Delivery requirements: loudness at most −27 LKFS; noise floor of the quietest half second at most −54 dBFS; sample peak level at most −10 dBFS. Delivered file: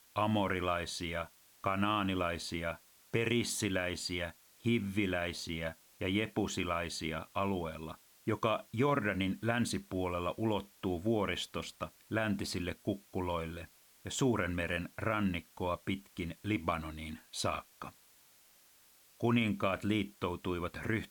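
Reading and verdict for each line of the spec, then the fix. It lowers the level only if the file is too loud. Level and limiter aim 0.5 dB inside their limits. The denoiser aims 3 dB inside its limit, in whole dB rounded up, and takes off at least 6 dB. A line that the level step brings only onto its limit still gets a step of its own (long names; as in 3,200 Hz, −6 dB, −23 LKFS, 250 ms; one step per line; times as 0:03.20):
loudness −35.5 LKFS: in spec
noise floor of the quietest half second −64 dBFS: in spec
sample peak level −15.5 dBFS: in spec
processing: no processing needed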